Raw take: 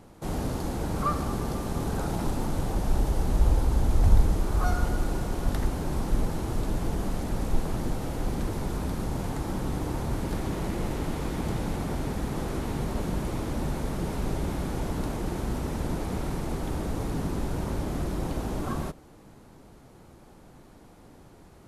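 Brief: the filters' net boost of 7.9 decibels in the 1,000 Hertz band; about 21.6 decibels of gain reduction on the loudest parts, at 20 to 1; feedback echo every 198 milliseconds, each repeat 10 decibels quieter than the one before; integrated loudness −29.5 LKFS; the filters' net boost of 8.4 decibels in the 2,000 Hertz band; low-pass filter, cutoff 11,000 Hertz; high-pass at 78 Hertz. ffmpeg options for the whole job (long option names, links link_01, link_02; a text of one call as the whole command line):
ffmpeg -i in.wav -af "highpass=78,lowpass=11000,equalizer=frequency=1000:width_type=o:gain=8,equalizer=frequency=2000:width_type=o:gain=8,acompressor=threshold=-36dB:ratio=20,aecho=1:1:198|396|594|792:0.316|0.101|0.0324|0.0104,volume=11dB" out.wav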